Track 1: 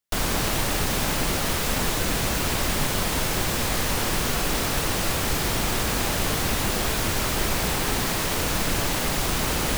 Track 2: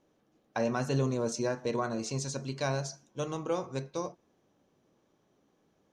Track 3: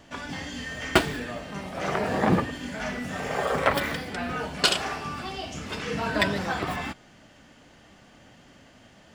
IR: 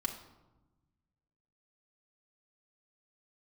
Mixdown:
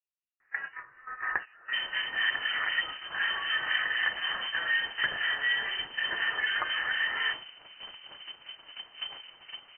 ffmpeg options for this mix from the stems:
-filter_complex "[0:a]equalizer=f=500:w=0.33:g=-4.5,adelay=1600,volume=-7.5dB,asplit=2[a][b];[b]volume=-21dB[c];[1:a]volume=-18.5dB,asplit=3[d][e][f];[d]atrim=end=0.76,asetpts=PTS-STARTPTS,afade=t=out:st=0.756:d=0.004:c=hsin[g];[e]atrim=start=0.76:end=1.29,asetpts=PTS-STARTPTS,volume=0[h];[f]atrim=start=1.29,asetpts=PTS-STARTPTS,afade=t=in:d=0.004:c=hsin[i];[g][h][i]concat=n=3:v=0:a=1[j];[2:a]highpass=f=1.3k:t=q:w=14,acompressor=threshold=-22dB:ratio=12,adelay=400,volume=-2dB,asplit=2[k][l];[l]volume=-15.5dB[m];[3:a]atrim=start_sample=2205[n];[c][m]amix=inputs=2:normalize=0[o];[o][n]afir=irnorm=-1:irlink=0[p];[a][j][k][p]amix=inputs=4:normalize=0,agate=range=-16dB:threshold=-29dB:ratio=16:detection=peak,acrossover=split=1700[q][r];[q]aeval=exprs='val(0)*(1-0.7/2+0.7/2*cos(2*PI*4*n/s))':c=same[s];[r]aeval=exprs='val(0)*(1-0.7/2-0.7/2*cos(2*PI*4*n/s))':c=same[t];[s][t]amix=inputs=2:normalize=0,lowpass=f=2.6k:t=q:w=0.5098,lowpass=f=2.6k:t=q:w=0.6013,lowpass=f=2.6k:t=q:w=0.9,lowpass=f=2.6k:t=q:w=2.563,afreqshift=-3100"

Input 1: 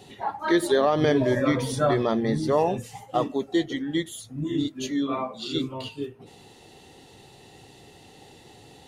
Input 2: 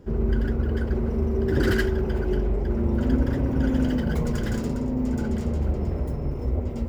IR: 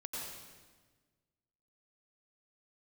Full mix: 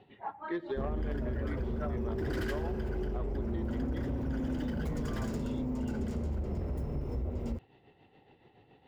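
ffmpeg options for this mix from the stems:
-filter_complex "[0:a]lowpass=f=2.8k:w=0.5412,lowpass=f=2.8k:w=1.3066,tremolo=f=7.1:d=0.56,volume=-8.5dB[a];[1:a]adelay=700,volume=-4dB,asplit=2[b][c];[c]volume=-14dB[d];[2:a]atrim=start_sample=2205[e];[d][e]afir=irnorm=-1:irlink=0[f];[a][b][f]amix=inputs=3:normalize=0,asoftclip=type=tanh:threshold=-21dB,acompressor=threshold=-31dB:ratio=6"

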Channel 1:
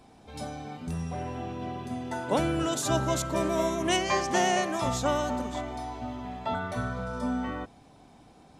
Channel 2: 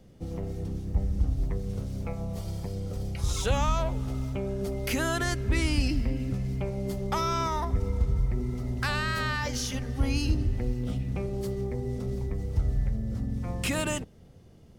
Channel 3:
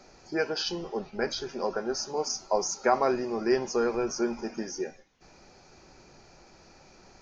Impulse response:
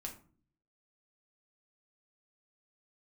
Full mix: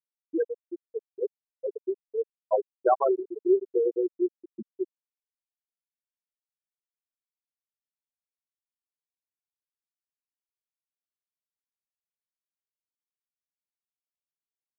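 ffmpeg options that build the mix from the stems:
-filter_complex "[1:a]asoftclip=type=tanh:threshold=-25dB,adelay=1950,volume=-10dB[a];[2:a]volume=2.5dB,asplit=2[b][c];[c]volume=-12.5dB[d];[3:a]atrim=start_sample=2205[e];[d][e]afir=irnorm=-1:irlink=0[f];[a][b][f]amix=inputs=3:normalize=0,highpass=120,afftfilt=real='re*gte(hypot(re,im),0.447)':imag='im*gte(hypot(re,im),0.447)':win_size=1024:overlap=0.75"

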